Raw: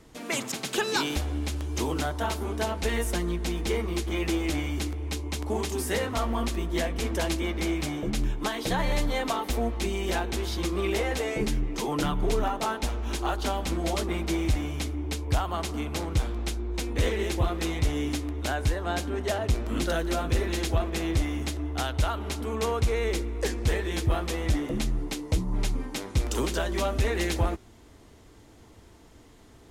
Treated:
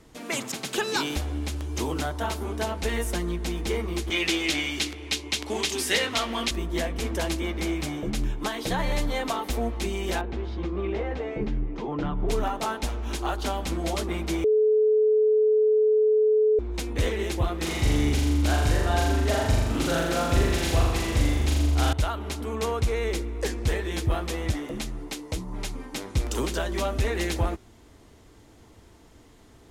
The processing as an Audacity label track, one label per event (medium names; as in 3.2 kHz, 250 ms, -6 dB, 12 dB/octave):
4.100000	6.510000	frequency weighting D
10.210000	12.290000	tape spacing loss at 10 kHz 35 dB
14.440000	16.590000	bleep 430 Hz -17 dBFS
17.570000	21.930000	flutter echo walls apart 7.1 m, dies away in 1.2 s
24.510000	25.930000	bass shelf 270 Hz -7.5 dB